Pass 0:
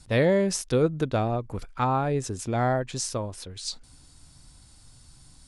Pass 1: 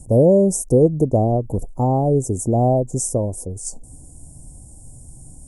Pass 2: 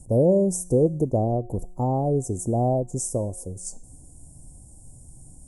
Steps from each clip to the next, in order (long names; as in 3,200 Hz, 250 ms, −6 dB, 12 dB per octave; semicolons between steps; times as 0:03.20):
inverse Chebyshev band-stop filter 1,400–4,100 Hz, stop band 50 dB; in parallel at −1 dB: downward compressor, threshold −32 dBFS, peak gain reduction 14 dB; on the sum: level +7 dB
tuned comb filter 180 Hz, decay 0.74 s, harmonics all, mix 50%